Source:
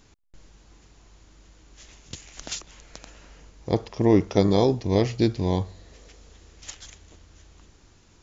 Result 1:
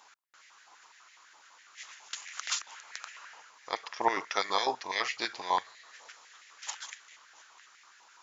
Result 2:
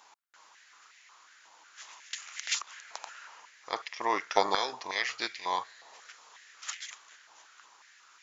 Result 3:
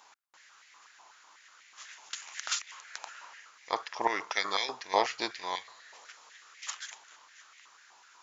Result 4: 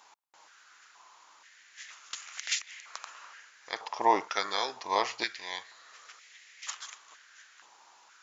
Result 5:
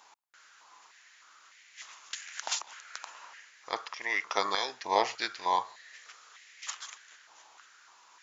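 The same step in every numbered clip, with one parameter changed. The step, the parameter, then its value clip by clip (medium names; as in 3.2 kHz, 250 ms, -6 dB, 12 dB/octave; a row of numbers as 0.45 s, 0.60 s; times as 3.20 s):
step-sequenced high-pass, rate: 12 Hz, 5.5 Hz, 8.1 Hz, 2.1 Hz, 3.3 Hz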